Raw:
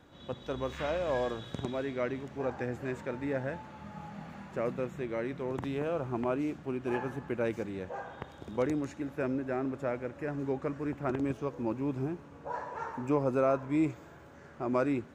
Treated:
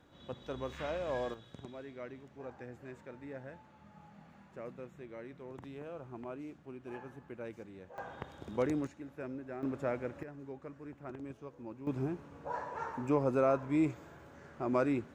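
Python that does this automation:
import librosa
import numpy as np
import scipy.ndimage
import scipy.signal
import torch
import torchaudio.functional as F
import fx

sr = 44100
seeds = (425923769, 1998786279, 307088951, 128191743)

y = fx.gain(x, sr, db=fx.steps((0.0, -5.0), (1.34, -12.5), (7.98, -2.0), (8.87, -10.0), (9.63, -1.5), (10.23, -13.0), (11.87, -1.5)))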